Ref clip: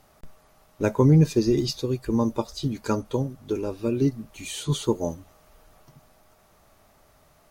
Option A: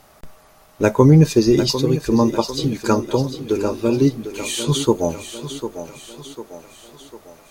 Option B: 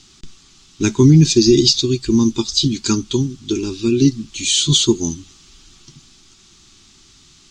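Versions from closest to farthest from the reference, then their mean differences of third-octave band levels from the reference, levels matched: A, B; 4.5 dB, 7.0 dB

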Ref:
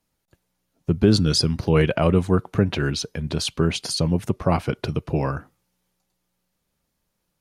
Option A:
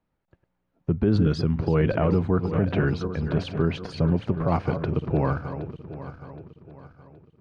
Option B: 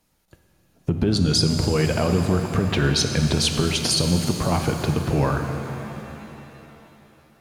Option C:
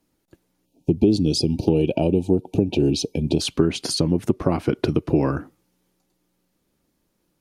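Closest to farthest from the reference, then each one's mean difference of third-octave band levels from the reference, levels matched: C, A, B; 4.5 dB, 6.0 dB, 10.0 dB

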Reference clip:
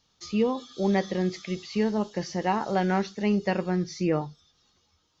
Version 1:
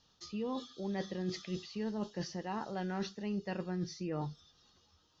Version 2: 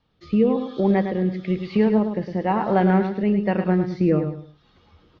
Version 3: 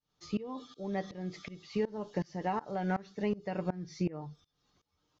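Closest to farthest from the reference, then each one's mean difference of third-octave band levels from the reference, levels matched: 1, 3, 2; 2.5 dB, 4.0 dB, 6.0 dB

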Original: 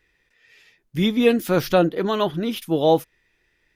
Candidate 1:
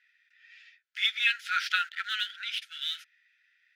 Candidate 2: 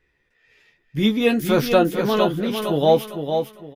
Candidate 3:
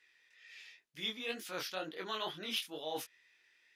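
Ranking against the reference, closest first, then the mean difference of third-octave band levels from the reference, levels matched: 2, 3, 1; 4.5 dB, 8.0 dB, 18.0 dB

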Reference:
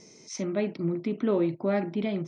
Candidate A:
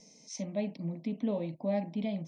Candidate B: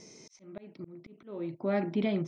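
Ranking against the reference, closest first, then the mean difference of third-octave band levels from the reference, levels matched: A, B; 3.0 dB, 6.0 dB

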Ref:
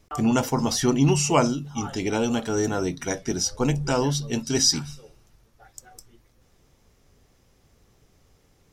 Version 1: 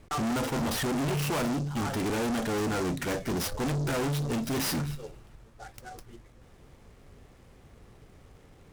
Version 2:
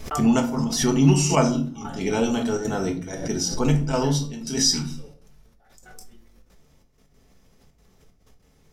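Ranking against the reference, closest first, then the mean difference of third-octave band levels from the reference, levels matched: 2, 1; 4.5 dB, 9.0 dB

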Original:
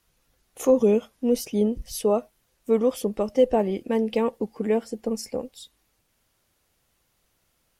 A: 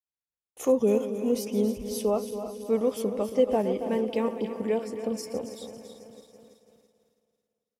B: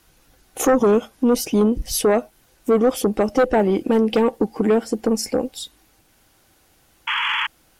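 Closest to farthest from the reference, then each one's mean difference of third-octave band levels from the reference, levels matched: B, A; 4.0 dB, 5.5 dB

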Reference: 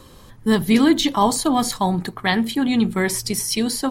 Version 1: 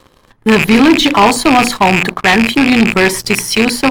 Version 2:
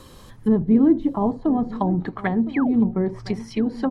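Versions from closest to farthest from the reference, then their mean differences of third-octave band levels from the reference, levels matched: 1, 2; 6.5 dB, 9.5 dB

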